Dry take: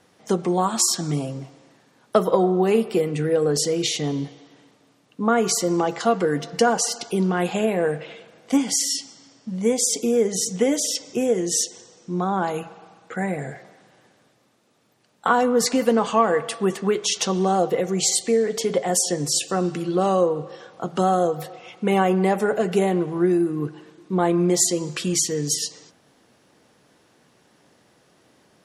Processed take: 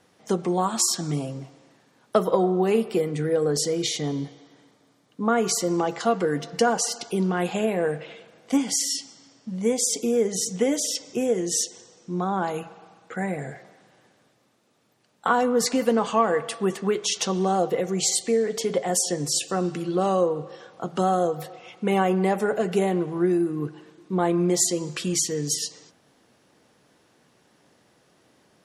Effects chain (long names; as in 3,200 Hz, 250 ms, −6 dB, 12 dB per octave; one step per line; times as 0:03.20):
0:02.97–0:05.23: notch filter 2,700 Hz, Q 7.5
level −2.5 dB